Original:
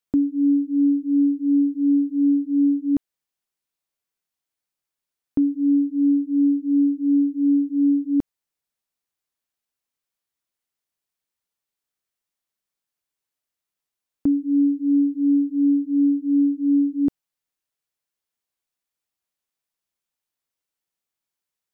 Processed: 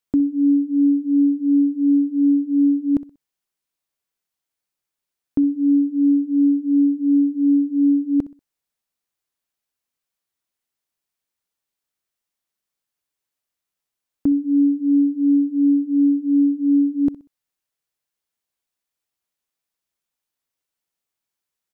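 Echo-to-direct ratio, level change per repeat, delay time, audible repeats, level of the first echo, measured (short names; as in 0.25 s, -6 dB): -17.5 dB, -10.0 dB, 63 ms, 2, -18.0 dB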